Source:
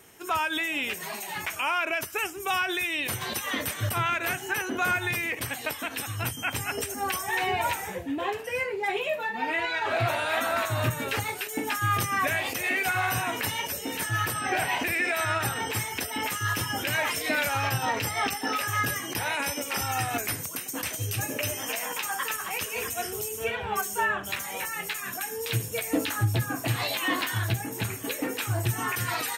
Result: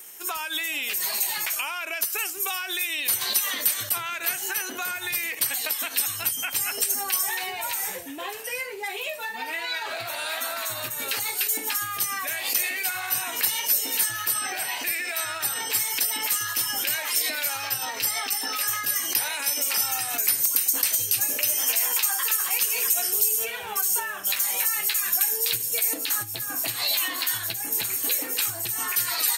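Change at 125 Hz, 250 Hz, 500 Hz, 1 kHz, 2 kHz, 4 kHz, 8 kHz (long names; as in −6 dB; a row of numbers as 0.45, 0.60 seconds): −18.0, −10.0, −6.5, −5.0, −2.0, +4.5, +9.0 decibels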